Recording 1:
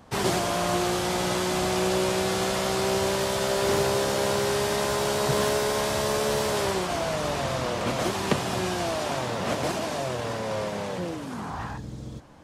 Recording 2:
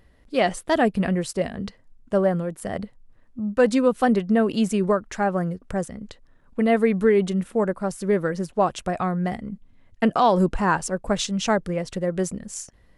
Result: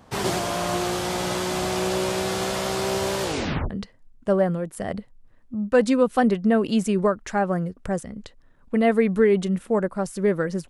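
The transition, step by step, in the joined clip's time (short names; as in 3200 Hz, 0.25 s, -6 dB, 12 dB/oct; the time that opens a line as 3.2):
recording 1
3.22 tape stop 0.48 s
3.7 switch to recording 2 from 1.55 s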